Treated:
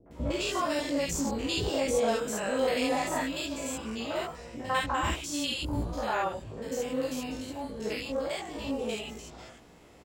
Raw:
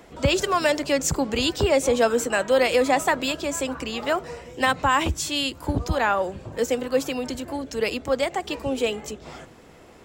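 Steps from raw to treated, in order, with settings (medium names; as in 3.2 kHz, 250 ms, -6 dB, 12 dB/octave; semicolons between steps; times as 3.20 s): spectrogram pixelated in time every 100 ms; chorus 0.2 Hz, delay 17 ms, depth 2 ms; three bands offset in time lows, mids, highs 60/110 ms, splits 450/1500 Hz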